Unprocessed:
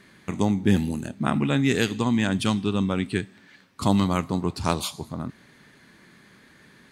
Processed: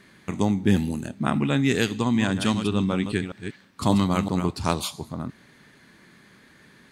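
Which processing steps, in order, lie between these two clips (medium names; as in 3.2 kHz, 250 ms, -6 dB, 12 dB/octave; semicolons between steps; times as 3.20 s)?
1.96–4.50 s: chunks repeated in reverse 194 ms, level -8 dB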